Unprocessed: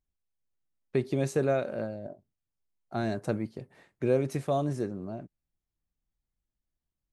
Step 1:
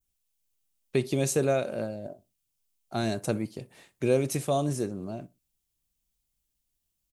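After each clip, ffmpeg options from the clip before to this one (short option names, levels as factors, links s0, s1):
-filter_complex "[0:a]adynamicequalizer=threshold=0.00251:dfrequency=3600:dqfactor=0.76:tfrequency=3600:tqfactor=0.76:attack=5:release=100:ratio=0.375:range=2:mode=cutabove:tftype=bell,aexciter=amount=2.5:drive=6.5:freq=2500,asplit=2[s0][s1];[s1]adelay=61,lowpass=f=2000:p=1,volume=0.0891,asplit=2[s2][s3];[s3]adelay=61,lowpass=f=2000:p=1,volume=0.29[s4];[s0][s2][s4]amix=inputs=3:normalize=0,volume=1.19"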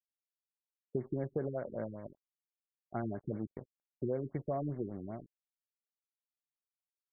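-af "aresample=8000,aeval=exprs='sgn(val(0))*max(abs(val(0))-0.00531,0)':c=same,aresample=44100,acompressor=threshold=0.0447:ratio=4,afftfilt=real='re*lt(b*sr/1024,400*pow(2300/400,0.5+0.5*sin(2*PI*5.1*pts/sr)))':imag='im*lt(b*sr/1024,400*pow(2300/400,0.5+0.5*sin(2*PI*5.1*pts/sr)))':win_size=1024:overlap=0.75,volume=0.596"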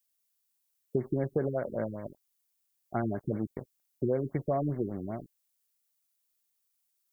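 -af "crystalizer=i=2.5:c=0,volume=2"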